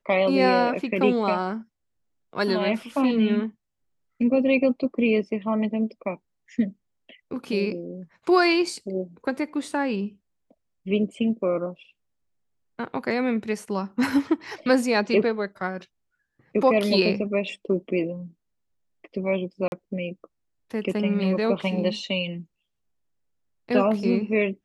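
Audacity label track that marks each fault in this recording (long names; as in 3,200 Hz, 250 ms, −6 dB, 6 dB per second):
19.680000	19.720000	drop-out 41 ms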